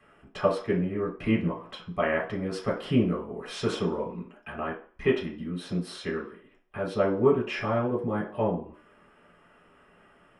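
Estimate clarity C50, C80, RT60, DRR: 8.0 dB, 12.5 dB, 0.45 s, -6.0 dB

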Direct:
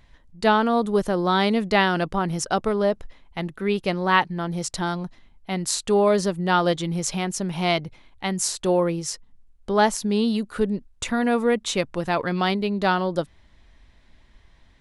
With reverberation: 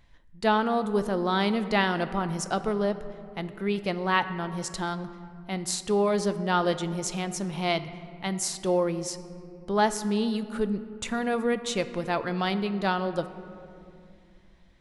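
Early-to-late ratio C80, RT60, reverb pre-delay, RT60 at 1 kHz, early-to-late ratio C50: 13.5 dB, 2.5 s, 6 ms, 2.3 s, 12.5 dB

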